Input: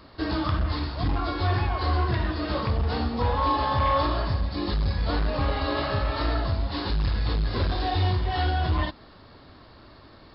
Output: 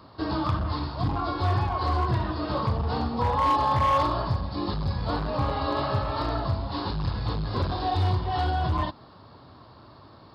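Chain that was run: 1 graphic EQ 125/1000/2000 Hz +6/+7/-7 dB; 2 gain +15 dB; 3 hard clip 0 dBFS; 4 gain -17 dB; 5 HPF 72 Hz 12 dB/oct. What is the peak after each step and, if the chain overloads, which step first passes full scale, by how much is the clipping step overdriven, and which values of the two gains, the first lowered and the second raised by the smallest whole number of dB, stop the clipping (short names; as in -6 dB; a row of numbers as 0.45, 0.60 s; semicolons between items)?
-9.5, +5.5, 0.0, -17.0, -13.5 dBFS; step 2, 5.5 dB; step 2 +9 dB, step 4 -11 dB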